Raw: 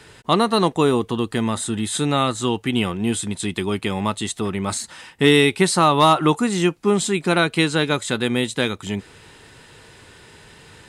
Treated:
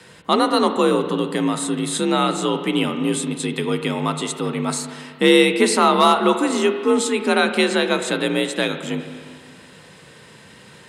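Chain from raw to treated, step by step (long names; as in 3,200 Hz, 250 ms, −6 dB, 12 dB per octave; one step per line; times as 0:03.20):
frequency shifter +52 Hz
spring reverb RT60 2 s, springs 32/47 ms, chirp 40 ms, DRR 7.5 dB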